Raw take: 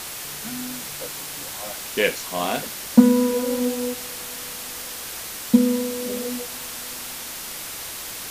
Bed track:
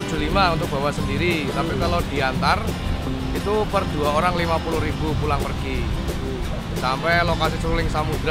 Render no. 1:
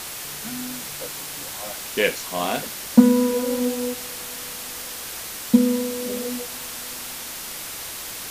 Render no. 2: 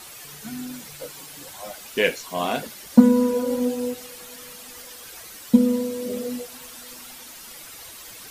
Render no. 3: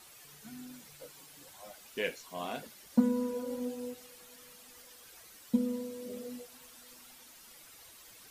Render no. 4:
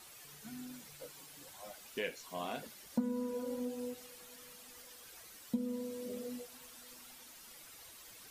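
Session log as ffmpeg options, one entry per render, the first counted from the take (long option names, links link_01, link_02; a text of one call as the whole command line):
ffmpeg -i in.wav -af anull out.wav
ffmpeg -i in.wav -af "afftdn=noise_reduction=11:noise_floor=-34" out.wav
ffmpeg -i in.wav -af "volume=-13.5dB" out.wav
ffmpeg -i in.wav -af "acompressor=threshold=-37dB:ratio=2" out.wav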